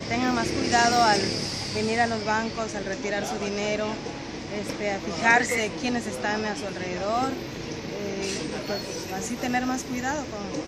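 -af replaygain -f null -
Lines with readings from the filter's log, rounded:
track_gain = +4.9 dB
track_peak = 0.379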